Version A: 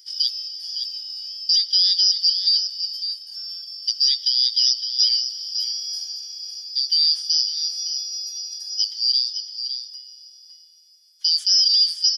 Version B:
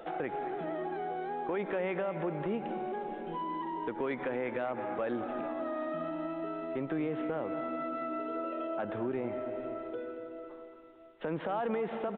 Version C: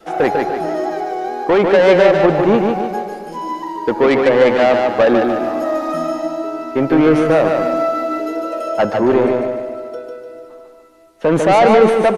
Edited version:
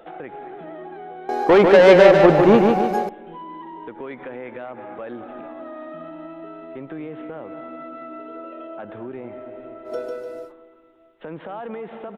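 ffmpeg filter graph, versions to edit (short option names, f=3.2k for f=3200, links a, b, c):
-filter_complex "[2:a]asplit=2[a][b];[1:a]asplit=3[c][d][e];[c]atrim=end=1.292[f];[a]atrim=start=1.288:end=3.092[g];[d]atrim=start=3.088:end=9.94[h];[b]atrim=start=9.84:end=10.53[i];[e]atrim=start=10.43[j];[f][g]acrossfade=d=0.004:c1=hsin:c2=hsin[k];[k][h]acrossfade=d=0.004:c1=hsin:c2=hsin[l];[l][i]acrossfade=d=0.1:c1=tri:c2=tri[m];[m][j]acrossfade=d=0.1:c1=tri:c2=tri"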